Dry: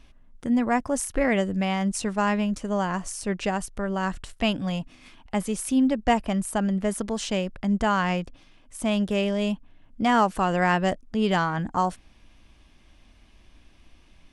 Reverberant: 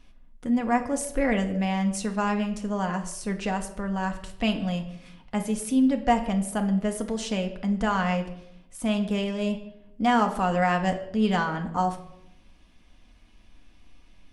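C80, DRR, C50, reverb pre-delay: 13.5 dB, 4.0 dB, 11.0 dB, 4 ms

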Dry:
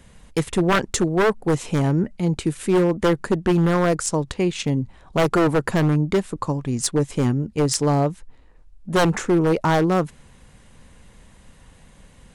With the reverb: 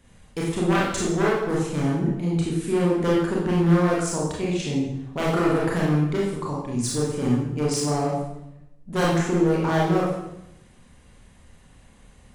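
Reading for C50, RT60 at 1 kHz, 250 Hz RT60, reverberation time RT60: 1.0 dB, 0.80 s, 1.0 s, 0.85 s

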